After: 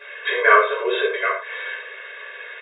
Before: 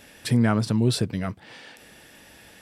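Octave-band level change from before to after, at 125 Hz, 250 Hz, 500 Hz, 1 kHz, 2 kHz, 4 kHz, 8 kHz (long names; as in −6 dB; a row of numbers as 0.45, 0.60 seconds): below −40 dB, below −10 dB, +10.0 dB, +15.5 dB, +18.0 dB, +3.5 dB, below −40 dB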